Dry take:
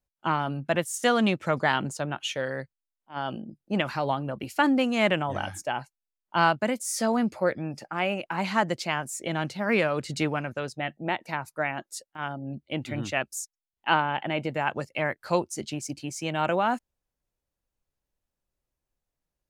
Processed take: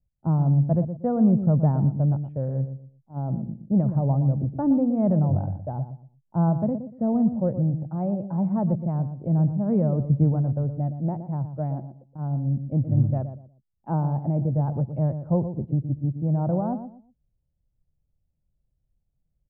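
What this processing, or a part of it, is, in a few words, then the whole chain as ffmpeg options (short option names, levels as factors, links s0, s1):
under water: -filter_complex "[0:a]lowpass=f=700:w=0.5412,lowpass=f=700:w=1.3066,lowshelf=f=210:t=q:w=1.5:g=12.5,equalizer=f=280:t=o:w=0.21:g=4,asplit=2[s0][s1];[s1]adelay=119,lowpass=f=840:p=1,volume=0.355,asplit=2[s2][s3];[s3]adelay=119,lowpass=f=840:p=1,volume=0.29,asplit=2[s4][s5];[s5]adelay=119,lowpass=f=840:p=1,volume=0.29[s6];[s0][s2][s4][s6]amix=inputs=4:normalize=0"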